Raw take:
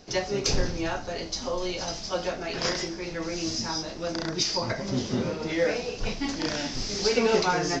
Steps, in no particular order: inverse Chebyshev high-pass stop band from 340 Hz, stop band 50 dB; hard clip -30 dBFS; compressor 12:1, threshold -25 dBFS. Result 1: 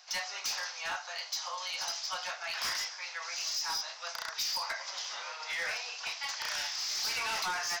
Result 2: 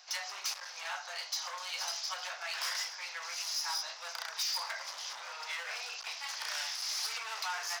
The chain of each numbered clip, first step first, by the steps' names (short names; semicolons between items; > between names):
inverse Chebyshev high-pass > compressor > hard clip; compressor > hard clip > inverse Chebyshev high-pass